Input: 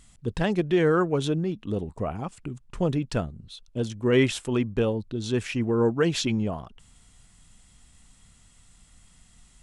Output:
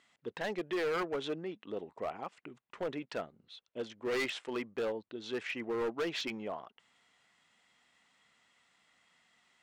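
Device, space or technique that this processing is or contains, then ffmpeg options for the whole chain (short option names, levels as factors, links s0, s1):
megaphone: -af "highpass=460,lowpass=3400,equalizer=f=2000:t=o:w=0.27:g=5,asoftclip=type=hard:threshold=0.0501,volume=0.631"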